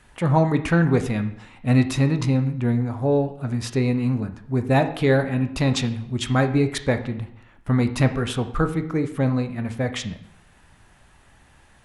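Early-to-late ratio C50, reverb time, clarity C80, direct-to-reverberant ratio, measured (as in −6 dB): 11.5 dB, 0.65 s, 14.5 dB, 7.5 dB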